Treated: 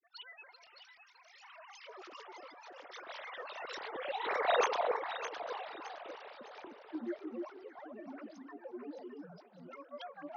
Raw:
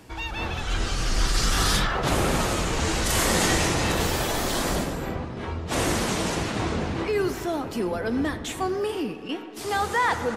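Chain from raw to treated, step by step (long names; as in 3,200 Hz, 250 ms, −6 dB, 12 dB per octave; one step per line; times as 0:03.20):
three sine waves on the formant tracks
source passing by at 0:04.55, 16 m/s, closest 2.1 metres
granular cloud, grains 20 per second, pitch spread up and down by 12 semitones
on a send: delay that swaps between a low-pass and a high-pass 306 ms, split 1,100 Hz, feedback 56%, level −3 dB
on the sum: level +3 dB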